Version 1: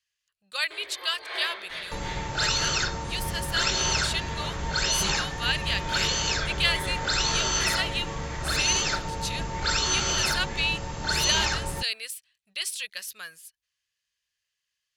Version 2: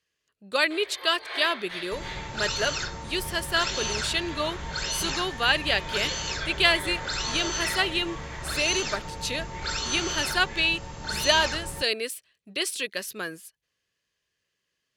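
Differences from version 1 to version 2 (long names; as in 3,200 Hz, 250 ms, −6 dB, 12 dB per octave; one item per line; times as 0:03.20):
speech: remove guitar amp tone stack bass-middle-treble 10-0-10
second sound −5.0 dB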